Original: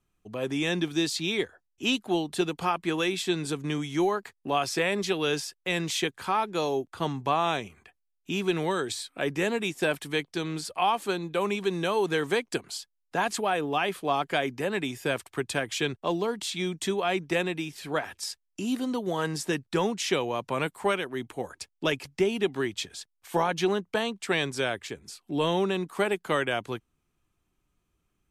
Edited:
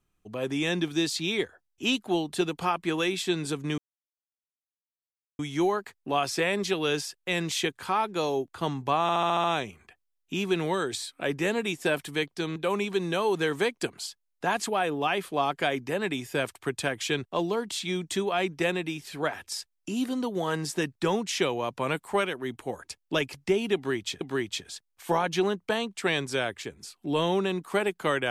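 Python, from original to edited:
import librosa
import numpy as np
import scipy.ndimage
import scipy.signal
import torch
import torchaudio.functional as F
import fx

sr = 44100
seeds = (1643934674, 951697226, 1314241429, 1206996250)

y = fx.edit(x, sr, fx.insert_silence(at_s=3.78, length_s=1.61),
    fx.stutter(start_s=7.41, slice_s=0.07, count=7),
    fx.cut(start_s=10.53, length_s=0.74),
    fx.repeat(start_s=22.46, length_s=0.46, count=2), tone=tone)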